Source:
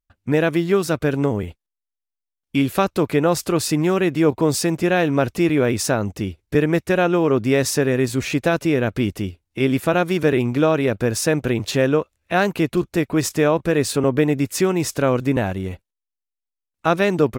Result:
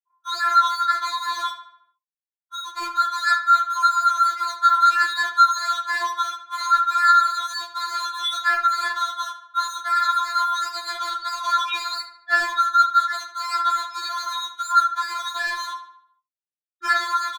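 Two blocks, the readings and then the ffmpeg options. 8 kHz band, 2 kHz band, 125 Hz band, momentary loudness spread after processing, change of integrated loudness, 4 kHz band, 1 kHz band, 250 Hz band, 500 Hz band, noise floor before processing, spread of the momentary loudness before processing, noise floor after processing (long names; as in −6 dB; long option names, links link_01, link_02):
−6.5 dB, +2.5 dB, below −40 dB, 11 LU, −1.0 dB, +4.0 dB, +9.0 dB, below −35 dB, −26.0 dB, −84 dBFS, 5 LU, below −85 dBFS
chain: -filter_complex "[0:a]afftfilt=real='real(if(lt(b,960),b+48*(1-2*mod(floor(b/48),2)),b),0)':imag='imag(if(lt(b,960),b+48*(1-2*mod(floor(b/48),2)),b),0)':win_size=2048:overlap=0.75,highpass=150,acompressor=threshold=-20dB:ratio=20,asplit=2[link_01][link_02];[link_02]highpass=frequency=720:poles=1,volume=29dB,asoftclip=type=tanh:threshold=-12dB[link_03];[link_01][link_03]amix=inputs=2:normalize=0,lowpass=frequency=3900:poles=1,volume=-6dB,afftfilt=real='re*gte(hypot(re,im),0.316)':imag='im*gte(hypot(re,im),0.316)':win_size=1024:overlap=0.75,deesser=0.65,asplit=2[link_04][link_05];[link_05]adelay=44,volume=-5dB[link_06];[link_04][link_06]amix=inputs=2:normalize=0,asoftclip=type=hard:threshold=-20.5dB,equalizer=frequency=2400:width=7.4:gain=6.5,asplit=2[link_07][link_08];[link_08]adelay=74,lowpass=frequency=3900:poles=1,volume=-10dB,asplit=2[link_09][link_10];[link_10]adelay=74,lowpass=frequency=3900:poles=1,volume=0.52,asplit=2[link_11][link_12];[link_12]adelay=74,lowpass=frequency=3900:poles=1,volume=0.52,asplit=2[link_13][link_14];[link_14]adelay=74,lowpass=frequency=3900:poles=1,volume=0.52,asplit=2[link_15][link_16];[link_16]adelay=74,lowpass=frequency=3900:poles=1,volume=0.52,asplit=2[link_17][link_18];[link_18]adelay=74,lowpass=frequency=3900:poles=1,volume=0.52[link_19];[link_09][link_11][link_13][link_15][link_17][link_19]amix=inputs=6:normalize=0[link_20];[link_07][link_20]amix=inputs=2:normalize=0,afftfilt=real='re*4*eq(mod(b,16),0)':imag='im*4*eq(mod(b,16),0)':win_size=2048:overlap=0.75,volume=3dB"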